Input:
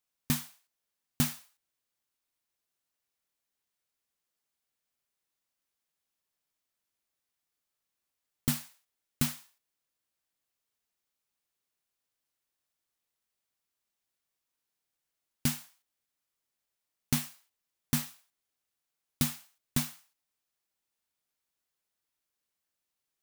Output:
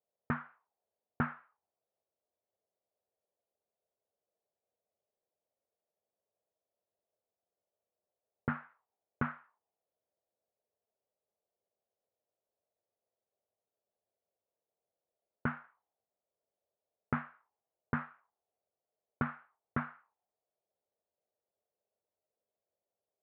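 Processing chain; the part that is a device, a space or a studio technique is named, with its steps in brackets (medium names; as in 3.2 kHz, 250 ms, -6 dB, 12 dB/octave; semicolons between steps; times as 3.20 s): envelope filter bass rig (touch-sensitive low-pass 620–1400 Hz up, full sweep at -35.5 dBFS; cabinet simulation 86–2300 Hz, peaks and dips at 94 Hz +4 dB, 140 Hz -7 dB, 280 Hz -8 dB, 440 Hz +5 dB); trim -1 dB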